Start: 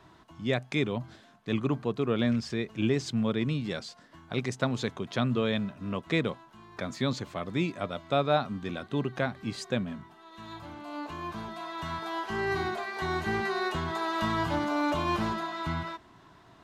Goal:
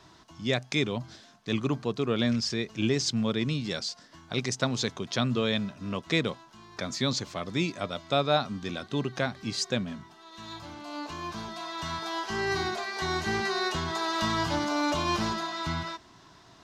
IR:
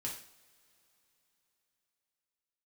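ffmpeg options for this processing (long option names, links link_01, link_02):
-af "equalizer=frequency=5500:width=1.1:gain=12.5"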